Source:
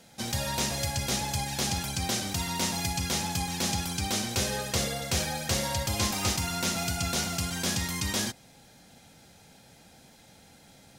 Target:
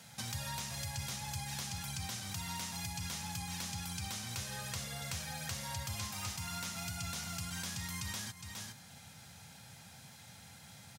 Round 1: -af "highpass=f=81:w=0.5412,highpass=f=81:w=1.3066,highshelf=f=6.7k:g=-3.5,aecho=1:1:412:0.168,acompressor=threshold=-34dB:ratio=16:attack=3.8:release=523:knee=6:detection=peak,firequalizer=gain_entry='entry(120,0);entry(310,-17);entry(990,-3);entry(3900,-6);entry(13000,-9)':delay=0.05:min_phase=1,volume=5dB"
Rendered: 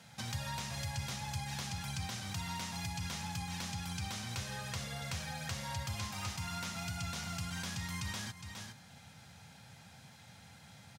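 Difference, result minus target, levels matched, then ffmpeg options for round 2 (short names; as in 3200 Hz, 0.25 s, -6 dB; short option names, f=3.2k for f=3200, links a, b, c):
8000 Hz band -3.5 dB
-af "highpass=f=81:w=0.5412,highpass=f=81:w=1.3066,highshelf=f=6.7k:g=7.5,aecho=1:1:412:0.168,acompressor=threshold=-34dB:ratio=16:attack=3.8:release=523:knee=6:detection=peak,firequalizer=gain_entry='entry(120,0);entry(310,-17);entry(990,-3);entry(3900,-6);entry(13000,-9)':delay=0.05:min_phase=1,volume=5dB"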